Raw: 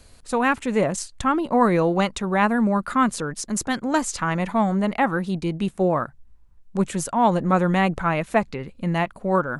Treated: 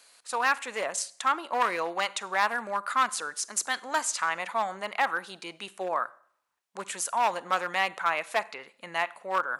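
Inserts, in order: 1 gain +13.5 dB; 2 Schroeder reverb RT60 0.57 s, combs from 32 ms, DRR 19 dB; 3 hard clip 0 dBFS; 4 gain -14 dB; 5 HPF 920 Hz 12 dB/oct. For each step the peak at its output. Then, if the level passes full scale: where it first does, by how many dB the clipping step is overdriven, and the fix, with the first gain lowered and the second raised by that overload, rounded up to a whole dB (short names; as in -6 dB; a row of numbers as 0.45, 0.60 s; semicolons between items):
+7.5, +7.5, 0.0, -14.0, -11.5 dBFS; step 1, 7.5 dB; step 1 +5.5 dB, step 4 -6 dB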